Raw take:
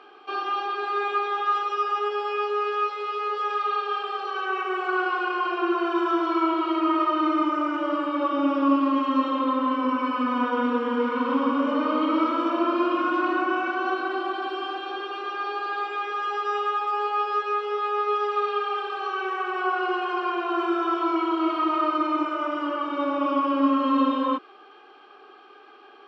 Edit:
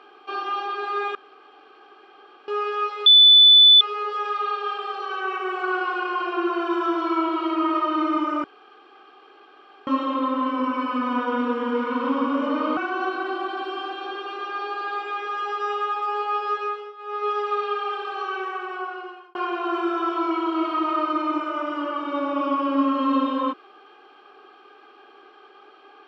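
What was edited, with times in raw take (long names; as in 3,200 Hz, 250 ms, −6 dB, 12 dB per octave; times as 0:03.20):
0:01.15–0:02.48: fill with room tone
0:03.06: insert tone 3,490 Hz −8 dBFS 0.75 s
0:07.69–0:09.12: fill with room tone
0:12.02–0:13.62: remove
0:17.47–0:18.14: duck −16.5 dB, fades 0.31 s
0:19.17–0:20.20: fade out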